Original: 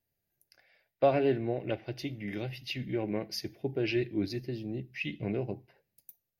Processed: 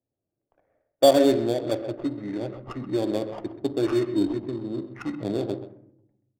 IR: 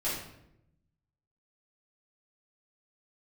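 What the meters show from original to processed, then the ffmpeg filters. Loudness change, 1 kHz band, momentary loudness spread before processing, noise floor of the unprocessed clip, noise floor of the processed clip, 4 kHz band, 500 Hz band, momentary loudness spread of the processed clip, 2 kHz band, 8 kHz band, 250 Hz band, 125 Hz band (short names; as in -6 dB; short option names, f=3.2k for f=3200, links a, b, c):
+7.5 dB, +6.5 dB, 10 LU, -84 dBFS, -85 dBFS, +6.5 dB, +8.0 dB, 14 LU, -1.5 dB, +11.5 dB, +8.5 dB, +1.0 dB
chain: -filter_complex "[0:a]highpass=120,equalizer=f=170:t=q:w=4:g=-7,equalizer=f=290:t=q:w=4:g=7,equalizer=f=590:t=q:w=4:g=6,equalizer=f=2.4k:t=q:w=4:g=-9,lowpass=f=4.5k:w=0.5412,lowpass=f=4.5k:w=1.3066,acrusher=samples=11:mix=1:aa=0.000001,asplit=2[a][b];[1:a]atrim=start_sample=2205[c];[b][c]afir=irnorm=-1:irlink=0,volume=-14dB[d];[a][d]amix=inputs=2:normalize=0,adynamicsmooth=sensitivity=5.5:basefreq=740,asplit=2[e][f];[f]adelay=130,highpass=300,lowpass=3.4k,asoftclip=type=hard:threshold=-18dB,volume=-12dB[g];[e][g]amix=inputs=2:normalize=0,volume=3dB"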